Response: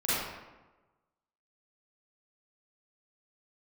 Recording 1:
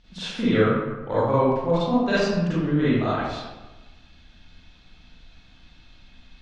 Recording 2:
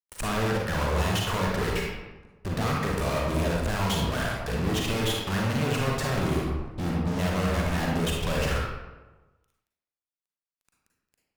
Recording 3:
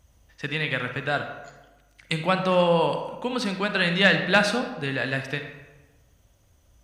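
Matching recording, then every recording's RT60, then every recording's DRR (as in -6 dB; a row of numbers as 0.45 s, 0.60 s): 1; 1.2 s, 1.2 s, 1.1 s; -12.0 dB, -2.5 dB, 6.0 dB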